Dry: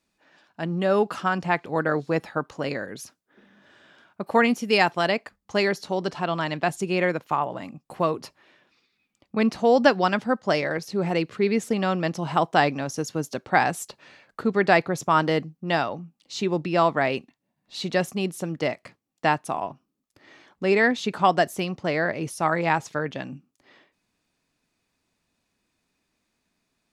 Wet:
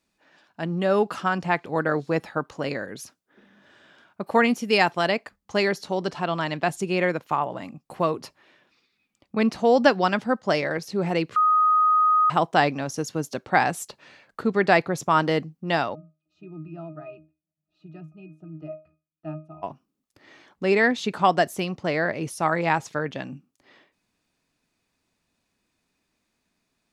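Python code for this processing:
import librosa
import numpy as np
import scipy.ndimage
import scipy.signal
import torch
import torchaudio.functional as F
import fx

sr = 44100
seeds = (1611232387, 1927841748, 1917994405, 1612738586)

y = fx.octave_resonator(x, sr, note='D#', decay_s=0.28, at=(15.94, 19.62), fade=0.02)
y = fx.edit(y, sr, fx.bleep(start_s=11.36, length_s=0.94, hz=1250.0, db=-15.5), tone=tone)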